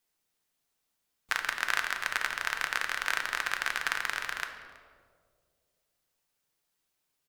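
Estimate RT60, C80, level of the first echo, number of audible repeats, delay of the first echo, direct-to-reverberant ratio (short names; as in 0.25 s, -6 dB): 2.1 s, 8.5 dB, -22.0 dB, 1, 0.325 s, 4.5 dB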